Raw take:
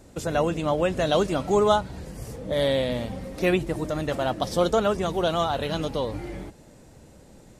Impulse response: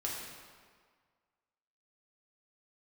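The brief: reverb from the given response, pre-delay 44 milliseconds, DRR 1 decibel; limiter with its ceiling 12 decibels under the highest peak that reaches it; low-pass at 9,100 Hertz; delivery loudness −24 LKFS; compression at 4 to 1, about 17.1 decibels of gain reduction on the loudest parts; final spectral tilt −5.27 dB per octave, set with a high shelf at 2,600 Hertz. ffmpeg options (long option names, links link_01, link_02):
-filter_complex "[0:a]lowpass=9100,highshelf=frequency=2600:gain=3.5,acompressor=threshold=-38dB:ratio=4,alimiter=level_in=11.5dB:limit=-24dB:level=0:latency=1,volume=-11.5dB,asplit=2[link_01][link_02];[1:a]atrim=start_sample=2205,adelay=44[link_03];[link_02][link_03]afir=irnorm=-1:irlink=0,volume=-4dB[link_04];[link_01][link_04]amix=inputs=2:normalize=0,volume=18.5dB"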